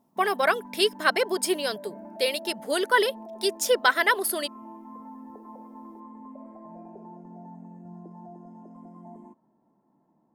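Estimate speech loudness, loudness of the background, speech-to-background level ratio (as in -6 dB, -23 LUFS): -24.5 LUFS, -44.5 LUFS, 20.0 dB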